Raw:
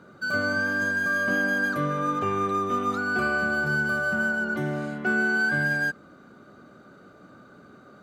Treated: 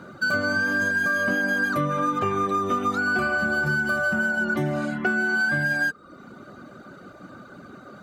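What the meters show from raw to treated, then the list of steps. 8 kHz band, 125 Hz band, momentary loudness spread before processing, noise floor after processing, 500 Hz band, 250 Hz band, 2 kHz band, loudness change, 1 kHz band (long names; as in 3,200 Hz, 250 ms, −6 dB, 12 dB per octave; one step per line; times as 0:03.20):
+3.0 dB, +2.0 dB, 5 LU, −47 dBFS, +1.5 dB, +2.0 dB, +1.5 dB, +2.0 dB, +2.0 dB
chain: notch filter 440 Hz, Q 12
reverb reduction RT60 0.65 s
downward compressor, threshold −29 dBFS, peak gain reduction 8 dB
level +8.5 dB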